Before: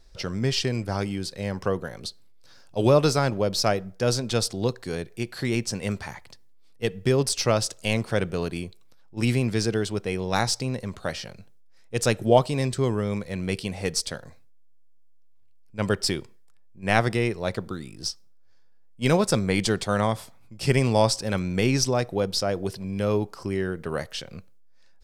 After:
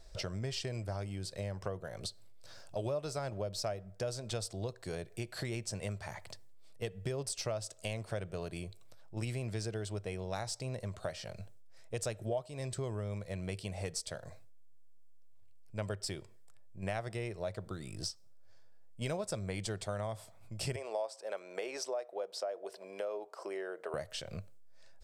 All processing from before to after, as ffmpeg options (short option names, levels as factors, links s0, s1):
-filter_complex "[0:a]asettb=1/sr,asplit=3[s0][s1][s2];[s0]atrim=end=20.764[s3];[s1]atrim=start=20.76:end=23.94,asetpts=PTS-STARTPTS,afade=t=in:d=0.004:c=qsin,afade=t=out:st=3.176:d=0.004:c=qsin,highpass=f=420:w=0.5412,highpass=f=420:w=1.3066,highshelf=f=2300:g=-10.5[s4];[s2]atrim=start=23.936[s5];[s3][s4]acrossfade=d=0.004:c1=hsin:c2=qsin[s6];[s6][s5]acrossfade=d=0.004:c1=qsin:c2=hsin,equalizer=f=100:t=o:w=0.33:g=8,equalizer=f=250:t=o:w=0.33:g=-7,equalizer=f=630:t=o:w=0.33:g=10,equalizer=f=8000:t=o:w=0.33:g=6,acompressor=threshold=0.0141:ratio=4,volume=0.891"